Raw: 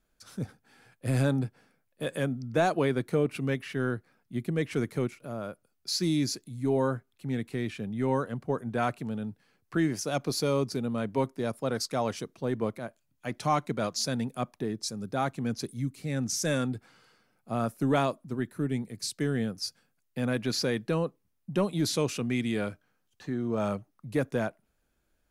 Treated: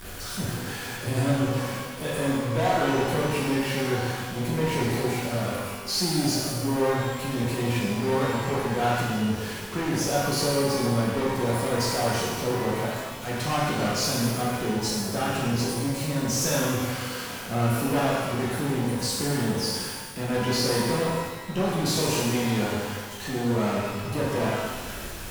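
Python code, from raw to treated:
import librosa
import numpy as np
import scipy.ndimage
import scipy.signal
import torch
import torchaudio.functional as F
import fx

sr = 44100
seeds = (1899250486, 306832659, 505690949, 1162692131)

y = x + 0.5 * 10.0 ** (-34.5 / 20.0) * np.sign(x)
y = fx.tube_stage(y, sr, drive_db=26.0, bias=0.5)
y = fx.rev_shimmer(y, sr, seeds[0], rt60_s=1.3, semitones=12, shimmer_db=-8, drr_db=-6.0)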